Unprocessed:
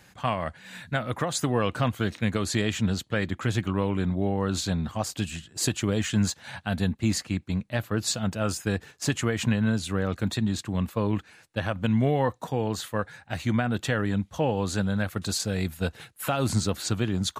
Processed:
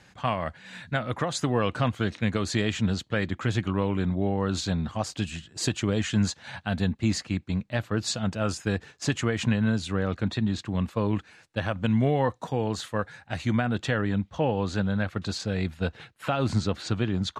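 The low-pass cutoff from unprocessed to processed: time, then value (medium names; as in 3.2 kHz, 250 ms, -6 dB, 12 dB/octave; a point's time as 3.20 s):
9.83 s 6.7 kHz
10.37 s 4 kHz
11.05 s 7.8 kHz
13.53 s 7.8 kHz
14.20 s 4.2 kHz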